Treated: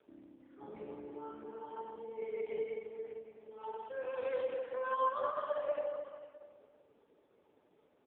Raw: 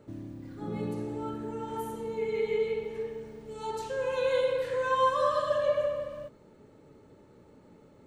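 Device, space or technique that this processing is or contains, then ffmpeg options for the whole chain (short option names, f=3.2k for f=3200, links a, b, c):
satellite phone: -af "highpass=360,lowpass=3.4k,aecho=1:1:566:0.133,volume=-6.5dB" -ar 8000 -c:a libopencore_amrnb -b:a 4750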